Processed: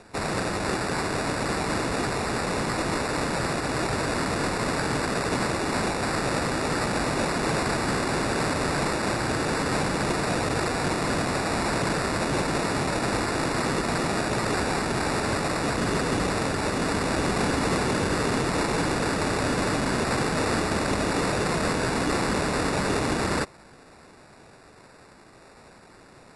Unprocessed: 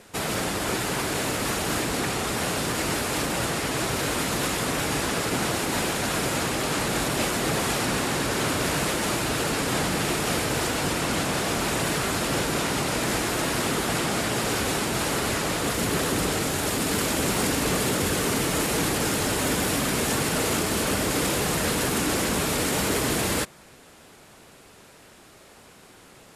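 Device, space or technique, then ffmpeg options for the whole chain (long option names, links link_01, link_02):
crushed at another speed: -af "asetrate=88200,aresample=44100,acrusher=samples=7:mix=1:aa=0.000001,asetrate=22050,aresample=44100"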